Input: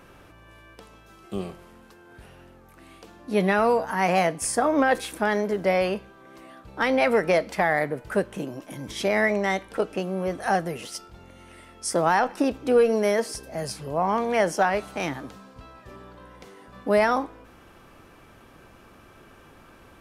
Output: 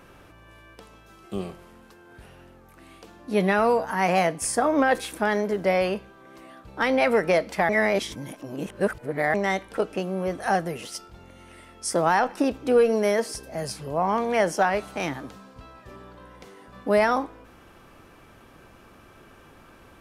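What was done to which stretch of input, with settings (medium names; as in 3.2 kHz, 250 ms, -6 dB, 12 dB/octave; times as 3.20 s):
7.69–9.34 s: reverse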